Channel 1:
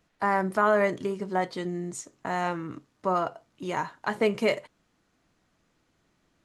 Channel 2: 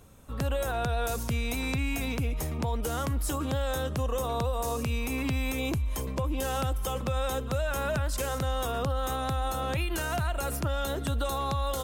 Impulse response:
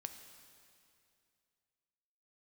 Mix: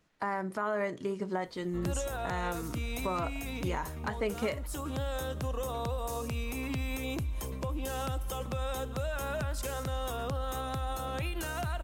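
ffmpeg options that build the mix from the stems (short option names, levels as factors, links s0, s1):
-filter_complex "[0:a]bandreject=f=710:w=22,volume=0.841[s0];[1:a]adelay=1450,volume=0.398,asplit=2[s1][s2];[s2]volume=0.668[s3];[2:a]atrim=start_sample=2205[s4];[s3][s4]afir=irnorm=-1:irlink=0[s5];[s0][s1][s5]amix=inputs=3:normalize=0,alimiter=limit=0.0794:level=0:latency=1:release=413"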